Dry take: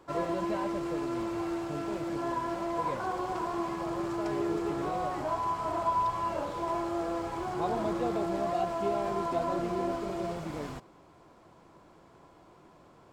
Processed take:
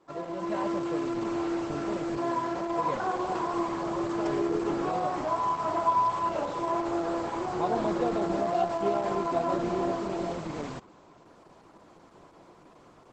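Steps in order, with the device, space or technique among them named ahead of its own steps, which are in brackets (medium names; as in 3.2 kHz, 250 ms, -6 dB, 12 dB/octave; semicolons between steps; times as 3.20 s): video call (high-pass 130 Hz 12 dB/octave; level rider gain up to 9 dB; trim -5 dB; Opus 12 kbps 48 kHz)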